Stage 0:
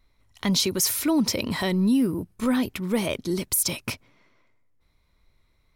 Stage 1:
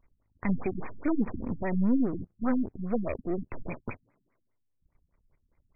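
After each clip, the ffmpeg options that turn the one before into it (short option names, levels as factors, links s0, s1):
-af "aeval=exprs='if(lt(val(0),0),0.251*val(0),val(0))':c=same,highshelf=f=5200:g=-7.5,afftfilt=real='re*lt(b*sr/1024,260*pow(2600/260,0.5+0.5*sin(2*PI*4.9*pts/sr)))':imag='im*lt(b*sr/1024,260*pow(2600/260,0.5+0.5*sin(2*PI*4.9*pts/sr)))':win_size=1024:overlap=0.75"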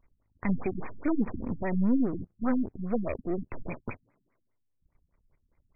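-af anull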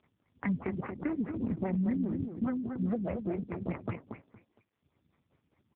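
-filter_complex "[0:a]acrossover=split=120|3000[s0][s1][s2];[s1]acompressor=threshold=0.0112:ratio=10[s3];[s0][s3][s2]amix=inputs=3:normalize=0,asplit=2[s4][s5];[s5]aecho=0:1:232|464|696:0.473|0.0994|0.0209[s6];[s4][s6]amix=inputs=2:normalize=0,volume=2.51" -ar 8000 -c:a libopencore_amrnb -b:a 4750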